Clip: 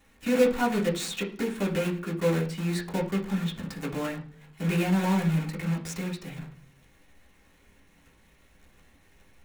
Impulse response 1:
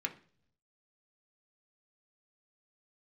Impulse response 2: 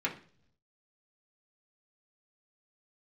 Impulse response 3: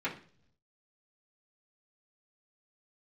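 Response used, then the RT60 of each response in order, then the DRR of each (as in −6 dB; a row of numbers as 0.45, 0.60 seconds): 2; 0.50 s, non-exponential decay, non-exponential decay; 2.5, −4.0, −9.5 decibels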